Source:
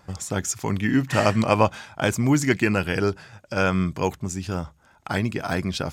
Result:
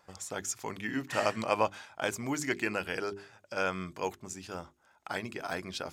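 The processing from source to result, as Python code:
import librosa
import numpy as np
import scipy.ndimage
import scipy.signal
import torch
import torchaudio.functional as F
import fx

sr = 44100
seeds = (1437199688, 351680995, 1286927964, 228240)

y = fx.bass_treble(x, sr, bass_db=-12, treble_db=0)
y = fx.hum_notches(y, sr, base_hz=50, count=8)
y = F.gain(torch.from_numpy(y), -8.0).numpy()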